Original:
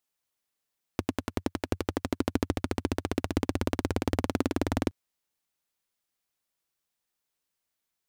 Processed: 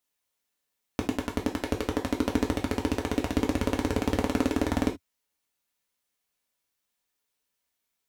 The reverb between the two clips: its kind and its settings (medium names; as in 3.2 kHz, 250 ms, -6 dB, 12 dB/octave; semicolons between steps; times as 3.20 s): gated-style reverb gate 100 ms falling, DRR 0 dB